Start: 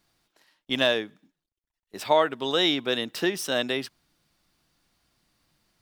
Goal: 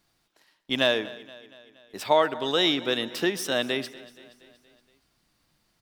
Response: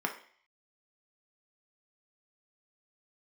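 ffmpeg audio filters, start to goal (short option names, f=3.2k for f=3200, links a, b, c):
-filter_complex "[0:a]aecho=1:1:236|472|708|944|1180:0.106|0.0614|0.0356|0.0207|0.012,asplit=2[a][b];[1:a]atrim=start_sample=2205,adelay=129[c];[b][c]afir=irnorm=-1:irlink=0,volume=-25dB[d];[a][d]amix=inputs=2:normalize=0"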